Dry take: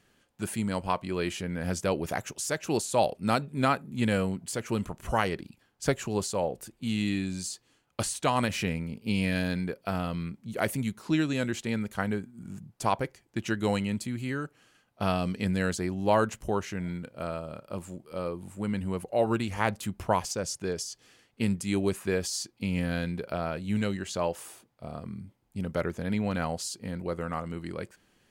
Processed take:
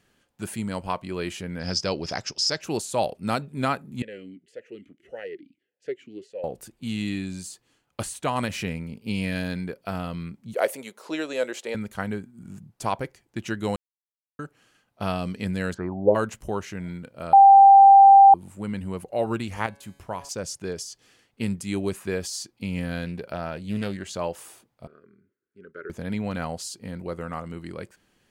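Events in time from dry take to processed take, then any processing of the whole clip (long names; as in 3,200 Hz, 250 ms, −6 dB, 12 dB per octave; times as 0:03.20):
0:01.59–0:02.61: low-pass with resonance 5,100 Hz, resonance Q 14
0:04.02–0:06.44: formant filter swept between two vowels e-i 1.7 Hz
0:07.28–0:08.36: dynamic equaliser 5,000 Hz, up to −6 dB, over −48 dBFS, Q 1.1
0:10.54–0:11.75: high-pass with resonance 510 Hz, resonance Q 3
0:13.76–0:14.39: silence
0:15.73–0:16.14: low-pass with resonance 1,700 Hz → 410 Hz
0:17.33–0:18.34: beep over 788 Hz −7.5 dBFS
0:19.66–0:20.29: tuned comb filter 140 Hz, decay 1.1 s
0:23.05–0:24.13: highs frequency-modulated by the lows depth 0.24 ms
0:24.87–0:25.90: pair of resonant band-passes 780 Hz, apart 1.9 octaves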